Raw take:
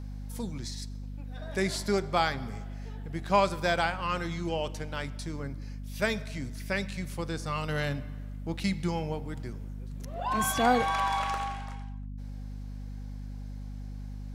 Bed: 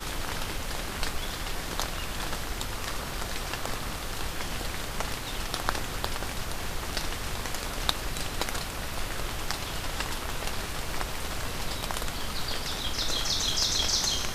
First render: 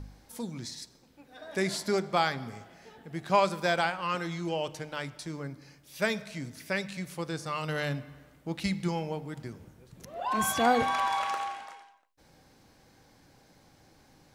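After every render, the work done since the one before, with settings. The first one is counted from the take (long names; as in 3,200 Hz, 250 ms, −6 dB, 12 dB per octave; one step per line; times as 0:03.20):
hum removal 50 Hz, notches 5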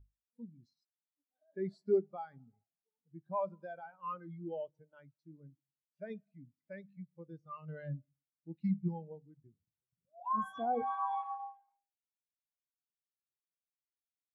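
brickwall limiter −20 dBFS, peak gain reduction 7.5 dB
every bin expanded away from the loudest bin 2.5 to 1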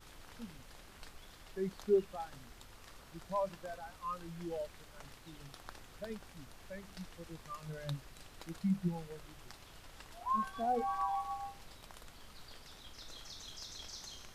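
mix in bed −22 dB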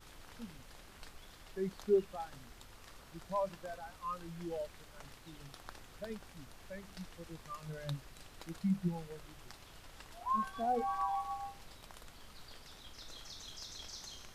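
no processing that can be heard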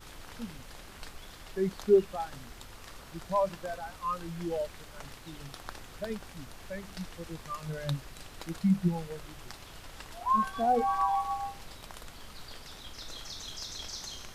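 level +7.5 dB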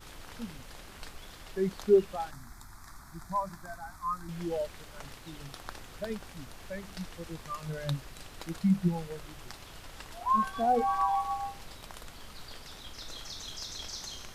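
0:02.31–0:04.29: phaser with its sweep stopped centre 1,200 Hz, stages 4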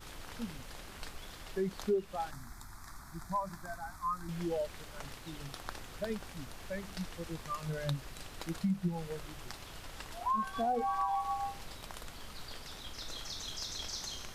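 downward compressor 3 to 1, threshold −31 dBFS, peak gain reduction 11 dB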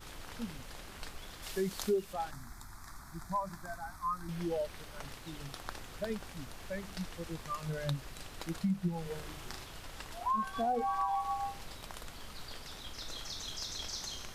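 0:01.42–0:02.12: high-shelf EQ 2,600 Hz → 4,700 Hz +11 dB
0:03.83–0:05.09: notch filter 7,200 Hz
0:09.02–0:09.65: flutter between parallel walls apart 6.4 metres, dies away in 0.48 s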